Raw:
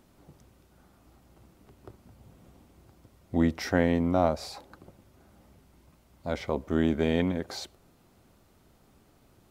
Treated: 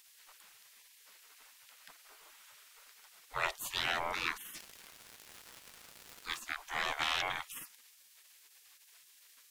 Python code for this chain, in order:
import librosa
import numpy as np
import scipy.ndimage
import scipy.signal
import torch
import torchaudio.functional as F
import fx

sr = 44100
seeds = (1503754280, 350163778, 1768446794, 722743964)

y = fx.fold_sine(x, sr, drive_db=8, ceiling_db=-8.5)
y = fx.spec_gate(y, sr, threshold_db=-25, keep='weak')
y = fx.dmg_crackle(y, sr, seeds[0], per_s=260.0, level_db=-38.0, at=(4.55, 6.39), fade=0.02)